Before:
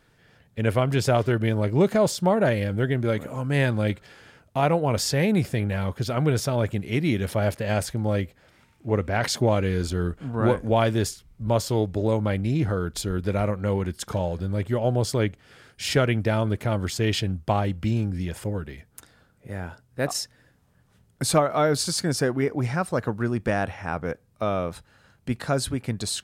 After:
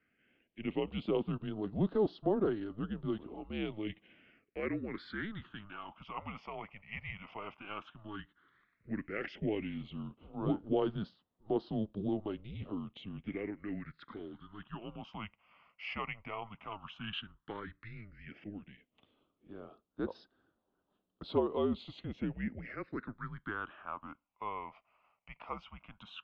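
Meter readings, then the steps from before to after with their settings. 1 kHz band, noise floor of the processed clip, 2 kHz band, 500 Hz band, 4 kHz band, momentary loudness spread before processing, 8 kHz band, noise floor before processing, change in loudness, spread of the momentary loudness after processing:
-14.5 dB, -83 dBFS, -14.0 dB, -14.0 dB, -16.5 dB, 9 LU, under -40 dB, -62 dBFS, -14.5 dB, 17 LU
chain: phase shifter stages 8, 0.11 Hz, lowest notch 530–2400 Hz; mistuned SSB -210 Hz 390–3400 Hz; trim -7.5 dB

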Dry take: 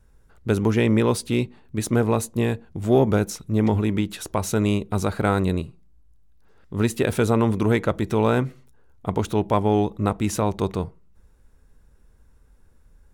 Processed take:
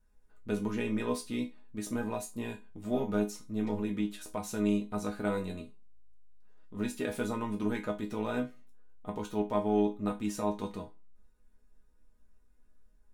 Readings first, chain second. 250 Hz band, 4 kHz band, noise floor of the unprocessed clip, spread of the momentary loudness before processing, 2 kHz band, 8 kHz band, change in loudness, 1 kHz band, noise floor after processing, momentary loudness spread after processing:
-9.5 dB, -12.0 dB, -55 dBFS, 9 LU, -11.0 dB, -12.0 dB, -11.5 dB, -11.5 dB, -62 dBFS, 11 LU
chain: chord resonator G#3 minor, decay 0.24 s; trim +4 dB

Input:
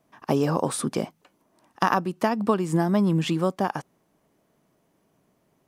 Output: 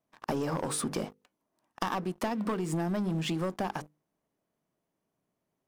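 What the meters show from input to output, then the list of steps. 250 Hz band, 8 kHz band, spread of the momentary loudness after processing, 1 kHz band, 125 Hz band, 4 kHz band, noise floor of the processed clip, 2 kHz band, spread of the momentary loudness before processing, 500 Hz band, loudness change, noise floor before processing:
-8.0 dB, -3.0 dB, 6 LU, -9.0 dB, -8.0 dB, -4.5 dB, -84 dBFS, -8.0 dB, 7 LU, -8.5 dB, -8.0 dB, -69 dBFS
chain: hum notches 50/100/150/200/250/300/350/400/450/500 Hz; waveshaping leveller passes 3; compression, threshold -20 dBFS, peak gain reduction 9 dB; trim -9 dB

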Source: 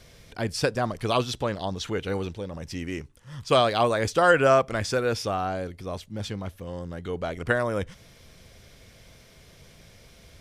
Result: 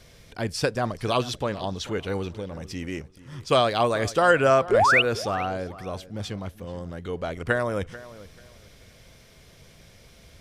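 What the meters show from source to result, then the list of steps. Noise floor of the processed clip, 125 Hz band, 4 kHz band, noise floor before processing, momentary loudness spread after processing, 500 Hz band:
-53 dBFS, 0.0 dB, +1.5 dB, -53 dBFS, 18 LU, +0.5 dB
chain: painted sound rise, 4.71–5.02 s, 360–3100 Hz -18 dBFS; filtered feedback delay 438 ms, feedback 24%, low-pass 2.9 kHz, level -17 dB

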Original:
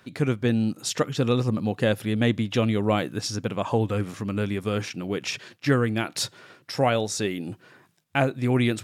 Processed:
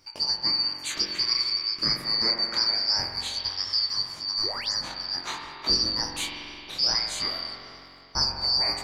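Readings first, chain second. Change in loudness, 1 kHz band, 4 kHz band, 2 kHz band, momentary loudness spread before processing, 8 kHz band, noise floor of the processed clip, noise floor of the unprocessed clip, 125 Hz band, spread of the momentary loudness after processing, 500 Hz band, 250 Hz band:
+1.0 dB, -5.5 dB, +12.5 dB, -5.0 dB, 7 LU, -0.5 dB, -46 dBFS, -60 dBFS, -19.0 dB, 10 LU, -16.5 dB, -17.5 dB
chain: four frequency bands reordered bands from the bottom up 2341; spring tank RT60 2.9 s, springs 44 ms, chirp 65 ms, DRR 1 dB; painted sound rise, 4.43–4.73 s, 290–8000 Hz -34 dBFS; chorus 0.23 Hz, delay 20 ms, depth 6.9 ms

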